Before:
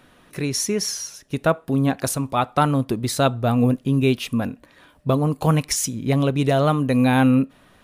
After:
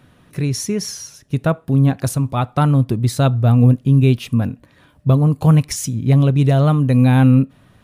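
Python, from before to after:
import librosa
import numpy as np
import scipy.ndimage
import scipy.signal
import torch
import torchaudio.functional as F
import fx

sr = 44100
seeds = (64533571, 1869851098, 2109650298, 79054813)

y = fx.peak_eq(x, sr, hz=110.0, db=13.5, octaves=1.7)
y = F.gain(torch.from_numpy(y), -2.0).numpy()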